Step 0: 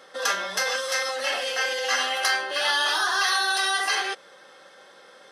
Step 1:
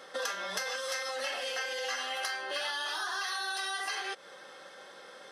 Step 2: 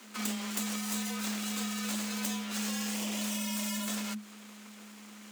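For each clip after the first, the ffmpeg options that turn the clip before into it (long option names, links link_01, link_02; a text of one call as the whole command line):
ffmpeg -i in.wav -af "acompressor=threshold=-32dB:ratio=10" out.wav
ffmpeg -i in.wav -af "aeval=exprs='abs(val(0))':channel_layout=same,aexciter=amount=2.1:drive=5:freq=6400,afreqshift=210" out.wav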